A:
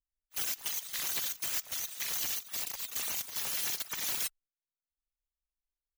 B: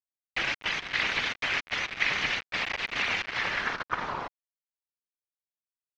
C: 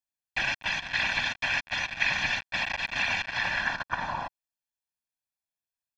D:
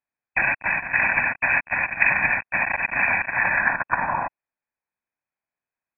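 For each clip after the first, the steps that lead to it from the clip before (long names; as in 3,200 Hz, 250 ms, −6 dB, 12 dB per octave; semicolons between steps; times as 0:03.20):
log-companded quantiser 2 bits; low-pass filter sweep 2,200 Hz → 640 Hz, 0:03.32–0:04.72; high shelf with overshoot 7,500 Hz −13.5 dB, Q 1.5; level +3.5 dB
comb filter 1.2 ms, depth 86%; level −1.5 dB
linear-phase brick-wall low-pass 2,600 Hz; low-shelf EQ 120 Hz −8 dB; level +8.5 dB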